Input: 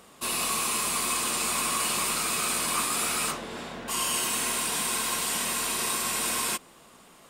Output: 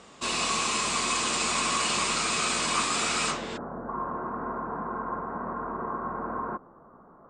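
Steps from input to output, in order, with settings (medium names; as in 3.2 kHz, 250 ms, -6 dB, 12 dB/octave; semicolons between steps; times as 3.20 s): steep low-pass 8 kHz 48 dB/octave, from 3.56 s 1.4 kHz; trim +2.5 dB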